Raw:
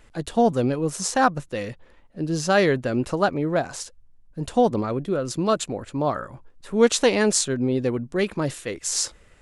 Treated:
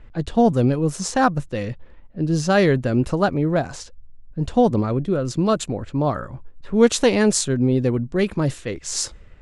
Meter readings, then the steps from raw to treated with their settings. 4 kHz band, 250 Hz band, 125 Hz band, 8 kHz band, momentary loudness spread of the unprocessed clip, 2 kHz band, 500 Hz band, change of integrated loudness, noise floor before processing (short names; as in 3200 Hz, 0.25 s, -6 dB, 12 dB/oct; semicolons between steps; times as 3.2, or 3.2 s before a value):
0.0 dB, +4.5 dB, +7.0 dB, -0.5 dB, 13 LU, 0.0 dB, +1.5 dB, +2.5 dB, -54 dBFS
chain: low-pass opened by the level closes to 2900 Hz, open at -19.5 dBFS; low shelf 200 Hz +11 dB